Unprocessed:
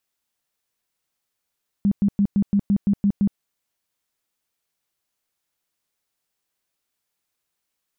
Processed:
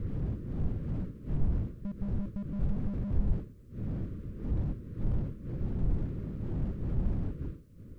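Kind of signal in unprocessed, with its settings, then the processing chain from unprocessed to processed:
tone bursts 201 Hz, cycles 13, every 0.17 s, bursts 9, -14.5 dBFS
wind noise 170 Hz -28 dBFS; Butterworth band-stop 800 Hz, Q 1.3; slew limiter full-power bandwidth 4.1 Hz

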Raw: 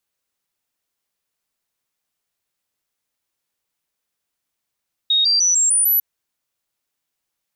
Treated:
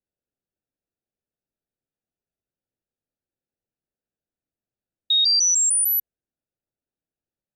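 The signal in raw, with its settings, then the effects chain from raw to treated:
stepped sine 3740 Hz up, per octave 3, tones 6, 0.15 s, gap 0.00 s -13 dBFS
Wiener smoothing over 41 samples; high shelf 10000 Hz -5.5 dB

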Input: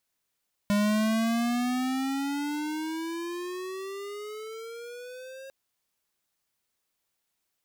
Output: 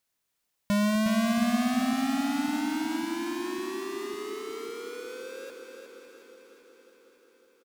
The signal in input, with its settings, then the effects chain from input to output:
gliding synth tone square, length 4.80 s, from 203 Hz, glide +17 st, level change -20 dB, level -23.5 dB
regenerating reverse delay 0.276 s, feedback 77%, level -14 dB; feedback echo 0.361 s, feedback 51%, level -6.5 dB

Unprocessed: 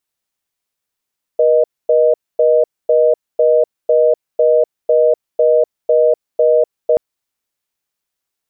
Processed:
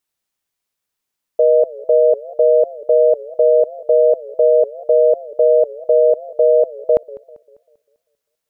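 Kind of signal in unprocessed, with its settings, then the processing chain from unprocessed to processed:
call progress tone reorder tone, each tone -11 dBFS 5.58 s
warbling echo 0.197 s, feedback 42%, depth 195 cents, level -20.5 dB

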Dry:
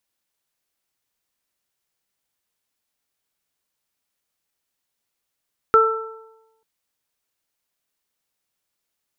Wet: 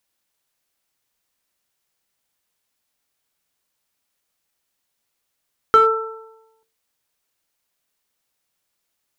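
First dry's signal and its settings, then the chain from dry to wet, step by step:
additive tone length 0.89 s, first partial 445 Hz, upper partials -15/4 dB, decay 0.95 s, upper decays 1.20/0.73 s, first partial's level -13 dB
notches 50/100/150/200/250/300/350/400/450 Hz; in parallel at -5 dB: overloaded stage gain 14.5 dB

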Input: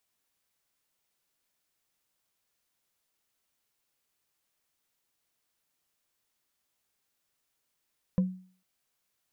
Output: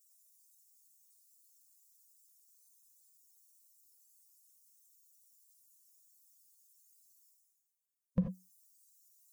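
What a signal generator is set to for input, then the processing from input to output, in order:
wood hit, lowest mode 185 Hz, decay 0.45 s, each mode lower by 11.5 dB, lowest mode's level -19 dB
per-bin expansion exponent 3; reverse; upward compressor, threshold -49 dBFS; reverse; non-linear reverb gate 0.11 s rising, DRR 5.5 dB

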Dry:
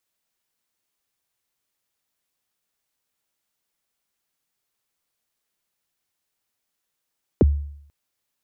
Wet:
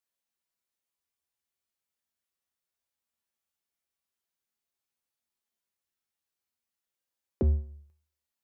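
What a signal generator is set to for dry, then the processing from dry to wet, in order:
kick drum length 0.49 s, from 540 Hz, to 72 Hz, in 25 ms, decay 0.68 s, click off, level -9 dB
resonator 76 Hz, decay 0.5 s, harmonics odd, mix 80%

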